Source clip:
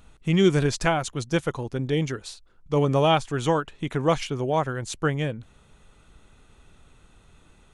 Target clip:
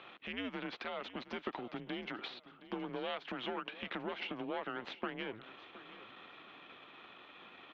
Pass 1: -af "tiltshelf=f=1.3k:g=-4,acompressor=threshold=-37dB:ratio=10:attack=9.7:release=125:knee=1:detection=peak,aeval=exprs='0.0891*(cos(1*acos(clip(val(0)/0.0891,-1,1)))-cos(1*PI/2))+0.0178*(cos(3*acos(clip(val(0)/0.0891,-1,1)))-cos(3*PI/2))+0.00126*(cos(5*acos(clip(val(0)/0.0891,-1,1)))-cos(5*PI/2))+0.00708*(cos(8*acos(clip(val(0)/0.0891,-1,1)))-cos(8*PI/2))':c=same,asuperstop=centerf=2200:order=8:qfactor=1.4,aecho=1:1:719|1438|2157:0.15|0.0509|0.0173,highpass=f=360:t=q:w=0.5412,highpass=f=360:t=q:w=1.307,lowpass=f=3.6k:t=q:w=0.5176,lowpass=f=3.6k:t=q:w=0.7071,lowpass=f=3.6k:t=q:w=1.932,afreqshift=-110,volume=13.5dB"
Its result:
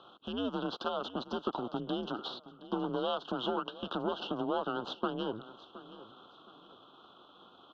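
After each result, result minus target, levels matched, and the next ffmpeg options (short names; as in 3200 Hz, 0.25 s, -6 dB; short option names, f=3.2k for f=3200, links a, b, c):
2000 Hz band -10.5 dB; compressor: peak gain reduction -6.5 dB
-af "tiltshelf=f=1.3k:g=-4,acompressor=threshold=-37dB:ratio=10:attack=9.7:release=125:knee=1:detection=peak,aeval=exprs='0.0891*(cos(1*acos(clip(val(0)/0.0891,-1,1)))-cos(1*PI/2))+0.0178*(cos(3*acos(clip(val(0)/0.0891,-1,1)))-cos(3*PI/2))+0.00126*(cos(5*acos(clip(val(0)/0.0891,-1,1)))-cos(5*PI/2))+0.00708*(cos(8*acos(clip(val(0)/0.0891,-1,1)))-cos(8*PI/2))':c=same,aecho=1:1:719|1438|2157:0.15|0.0509|0.0173,highpass=f=360:t=q:w=0.5412,highpass=f=360:t=q:w=1.307,lowpass=f=3.6k:t=q:w=0.5176,lowpass=f=3.6k:t=q:w=0.7071,lowpass=f=3.6k:t=q:w=1.932,afreqshift=-110,volume=13.5dB"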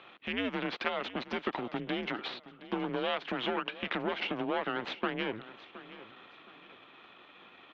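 compressor: peak gain reduction -6.5 dB
-af "tiltshelf=f=1.3k:g=-4,acompressor=threshold=-44dB:ratio=10:attack=9.7:release=125:knee=1:detection=peak,aeval=exprs='0.0891*(cos(1*acos(clip(val(0)/0.0891,-1,1)))-cos(1*PI/2))+0.0178*(cos(3*acos(clip(val(0)/0.0891,-1,1)))-cos(3*PI/2))+0.00126*(cos(5*acos(clip(val(0)/0.0891,-1,1)))-cos(5*PI/2))+0.00708*(cos(8*acos(clip(val(0)/0.0891,-1,1)))-cos(8*PI/2))':c=same,aecho=1:1:719|1438|2157:0.15|0.0509|0.0173,highpass=f=360:t=q:w=0.5412,highpass=f=360:t=q:w=1.307,lowpass=f=3.6k:t=q:w=0.5176,lowpass=f=3.6k:t=q:w=0.7071,lowpass=f=3.6k:t=q:w=1.932,afreqshift=-110,volume=13.5dB"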